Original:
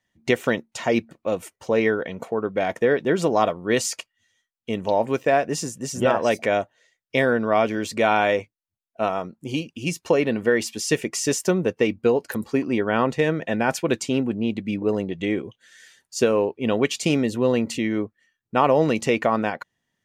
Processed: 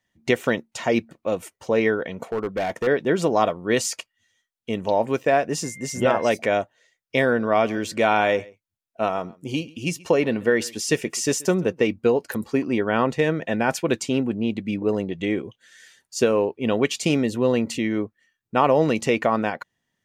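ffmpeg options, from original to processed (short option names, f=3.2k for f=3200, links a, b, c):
-filter_complex "[0:a]asettb=1/sr,asplit=3[a][b][c];[a]atrim=end=2.234[d];[b]atrim=start=2.23:end=2.87,asetpts=PTS-STARTPTS,afade=t=in:d=0.004:c=qsin,afade=t=out:st=0.636:d=0.004:c=qsin,asoftclip=type=hard:threshold=-20.5dB[e];[c]atrim=start=2.866[f];[d][e]acrossfade=d=0.004:c1=hsin:c2=qsin[g];[g][f]acrossfade=d=0.004:c1=qsin:c2=hsin,asettb=1/sr,asplit=3[h][i][j];[h]atrim=end=5.644[k];[i]atrim=start=5.64:end=6.32,asetpts=PTS-STARTPTS,afade=t=in:d=0.004:c=qsin,afade=t=out:st=0.676:d=0.004:c=qsin,aeval=exprs='val(0)+0.01*sin(2*PI*2100*n/s)':c=same[l];[j]atrim=start=6.316[m];[k][l]acrossfade=d=0.004:c1=hsin:c2=qsin[n];[n][m]acrossfade=d=0.004:c1=qsin:c2=hsin,asettb=1/sr,asplit=3[o][p][q];[o]atrim=end=7.244[r];[p]atrim=start=7.24:end=11.91,asetpts=PTS-STARTPTS,afade=t=in:d=0.004:c=qsin,afade=t=out:st=4.666:d=0.004:c=qsin,aecho=1:1:132:0.0708,atrim=end_sample=205947[s];[q]atrim=start=11.906[t];[r][s]acrossfade=d=0.004:c1=hsin:c2=qsin[u];[u][t]acrossfade=d=0.004:c1=qsin:c2=hsin"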